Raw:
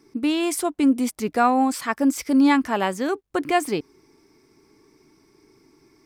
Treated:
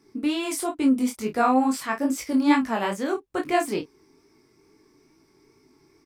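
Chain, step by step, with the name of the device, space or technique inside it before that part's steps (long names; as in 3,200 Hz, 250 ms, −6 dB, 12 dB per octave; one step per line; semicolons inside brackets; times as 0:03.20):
double-tracked vocal (double-tracking delay 31 ms −9 dB; chorus effect 2.3 Hz, delay 18.5 ms, depth 5.4 ms)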